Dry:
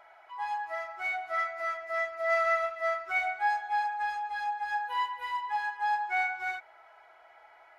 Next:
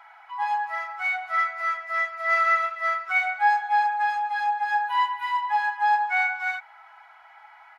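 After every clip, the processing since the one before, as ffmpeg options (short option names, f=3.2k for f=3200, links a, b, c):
-af "firequalizer=gain_entry='entry(160,0);entry(510,-19);entry(800,8);entry(6600,3)':delay=0.05:min_phase=1"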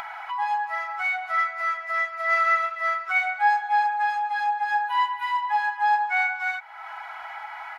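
-af "acompressor=mode=upward:threshold=-24dB:ratio=2.5"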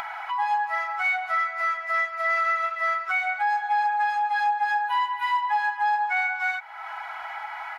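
-af "alimiter=limit=-18.5dB:level=0:latency=1:release=167,volume=2dB"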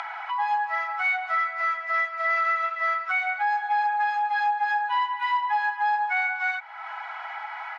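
-af "highpass=530,lowpass=5.2k"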